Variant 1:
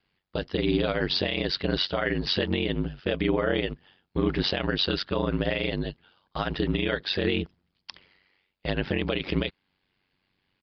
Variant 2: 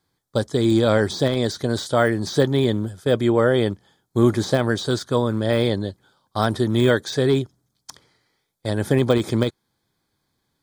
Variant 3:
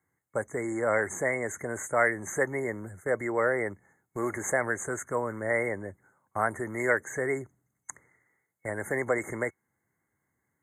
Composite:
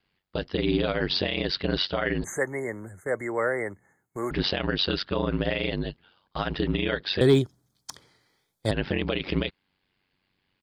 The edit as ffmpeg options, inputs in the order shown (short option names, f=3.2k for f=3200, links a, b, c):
-filter_complex "[0:a]asplit=3[a][b][c];[a]atrim=end=2.242[d];[2:a]atrim=start=2.238:end=4.312[e];[b]atrim=start=4.308:end=7.212[f];[1:a]atrim=start=7.208:end=8.712[g];[c]atrim=start=8.708[h];[d][e]acrossfade=d=0.004:c1=hsin:c2=hsin[i];[i][f]acrossfade=d=0.004:c1=hsin:c2=hsin[j];[j][g]acrossfade=d=0.004:c1=hsin:c2=hsin[k];[k][h]acrossfade=d=0.004:c1=hsin:c2=hsin"